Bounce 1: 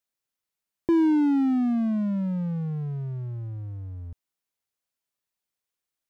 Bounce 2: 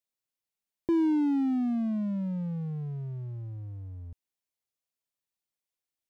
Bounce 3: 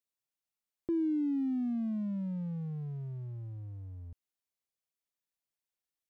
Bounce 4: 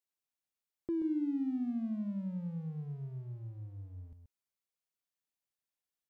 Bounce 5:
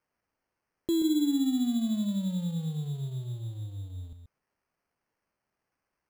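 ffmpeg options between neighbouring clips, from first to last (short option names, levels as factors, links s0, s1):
-af "equalizer=f=1400:t=o:w=0.78:g=-4.5,volume=0.596"
-af "asoftclip=type=tanh:threshold=0.0794,volume=0.668"
-af "aecho=1:1:130:0.398,volume=0.708"
-af "acrusher=samples=12:mix=1:aa=0.000001,volume=2.37"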